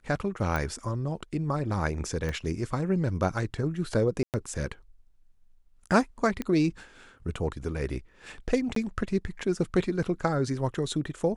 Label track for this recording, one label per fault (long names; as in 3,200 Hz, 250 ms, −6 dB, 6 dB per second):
0.560000	0.560000	click
2.290000	2.290000	click −20 dBFS
4.230000	4.340000	drop-out 108 ms
6.420000	6.420000	click −18 dBFS
8.750000	8.760000	drop-out 13 ms